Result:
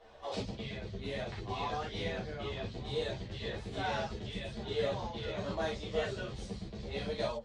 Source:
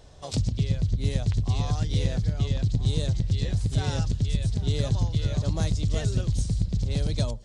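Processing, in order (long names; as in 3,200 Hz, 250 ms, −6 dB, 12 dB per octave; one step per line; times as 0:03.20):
three-way crossover with the lows and the highs turned down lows −17 dB, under 360 Hz, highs −21 dB, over 3,300 Hz
reverb whose tail is shaped and stops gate 80 ms flat, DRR −4 dB
string-ensemble chorus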